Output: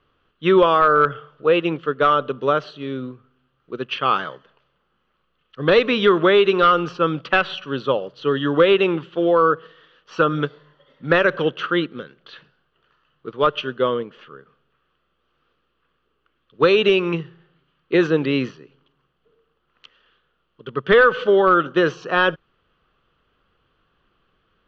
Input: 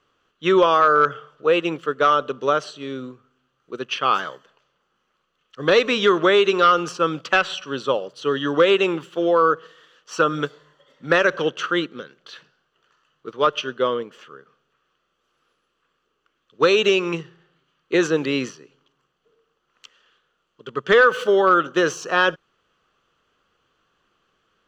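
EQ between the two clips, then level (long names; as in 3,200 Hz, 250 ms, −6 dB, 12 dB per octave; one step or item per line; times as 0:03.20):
low-pass filter 4,100 Hz 24 dB per octave
low-shelf EQ 100 Hz +7.5 dB
low-shelf EQ 240 Hz +5 dB
0.0 dB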